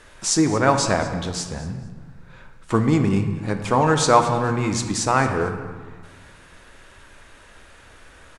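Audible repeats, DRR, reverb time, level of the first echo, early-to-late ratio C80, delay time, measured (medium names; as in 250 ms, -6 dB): 2, 5.5 dB, 1.6 s, -19.0 dB, 9.0 dB, 224 ms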